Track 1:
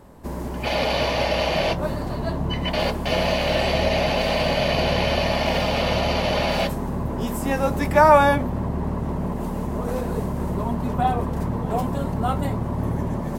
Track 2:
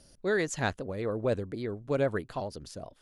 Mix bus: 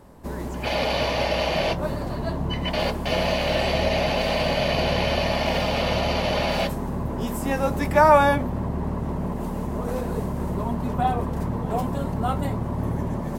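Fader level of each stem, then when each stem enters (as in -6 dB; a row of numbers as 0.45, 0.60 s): -1.5, -14.5 dB; 0.00, 0.00 s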